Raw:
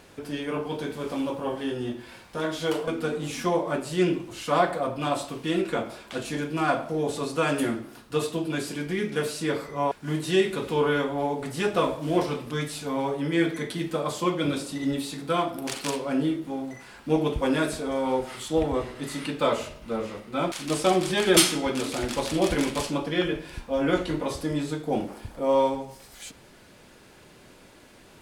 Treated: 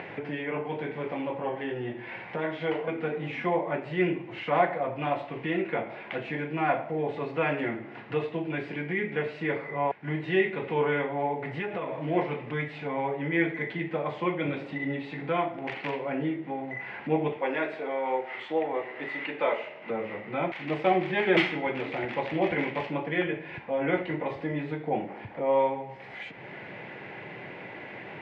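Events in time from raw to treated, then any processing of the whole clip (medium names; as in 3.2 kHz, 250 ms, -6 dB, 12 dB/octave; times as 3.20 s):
11.46–11.97 s: compression, threshold -27 dBFS
17.32–19.90 s: high-pass 330 Hz
whole clip: graphic EQ with 31 bands 250 Hz -6 dB, 800 Hz +5 dB, 1.25 kHz -5 dB, 2 kHz +10 dB; upward compressor, threshold -25 dBFS; Chebyshev band-pass 120–2600 Hz, order 3; trim -2.5 dB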